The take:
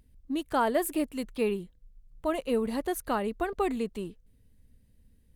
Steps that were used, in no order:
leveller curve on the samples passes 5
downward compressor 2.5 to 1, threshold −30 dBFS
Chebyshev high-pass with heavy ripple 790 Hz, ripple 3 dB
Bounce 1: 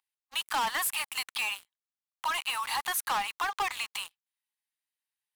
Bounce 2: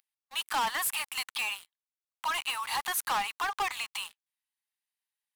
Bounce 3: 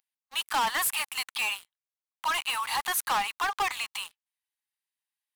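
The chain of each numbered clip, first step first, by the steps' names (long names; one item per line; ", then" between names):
Chebyshev high-pass with heavy ripple, then leveller curve on the samples, then downward compressor
downward compressor, then Chebyshev high-pass with heavy ripple, then leveller curve on the samples
Chebyshev high-pass with heavy ripple, then downward compressor, then leveller curve on the samples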